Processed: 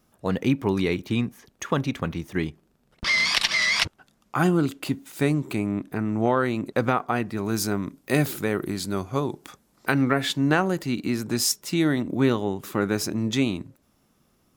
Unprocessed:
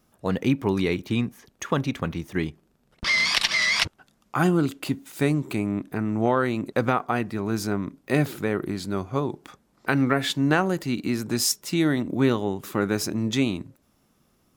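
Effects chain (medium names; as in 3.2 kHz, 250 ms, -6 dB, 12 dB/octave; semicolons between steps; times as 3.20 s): 7.37–9.92 s: treble shelf 5 kHz +9.5 dB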